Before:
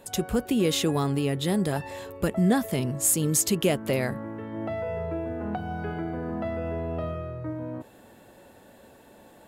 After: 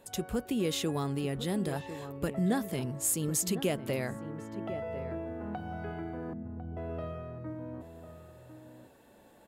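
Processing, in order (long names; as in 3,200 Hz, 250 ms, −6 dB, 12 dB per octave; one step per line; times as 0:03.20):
0:06.33–0:06.77: inverse Chebyshev low-pass filter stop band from 1,400 Hz, stop band 70 dB
slap from a distant wall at 180 metres, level −11 dB
level −7 dB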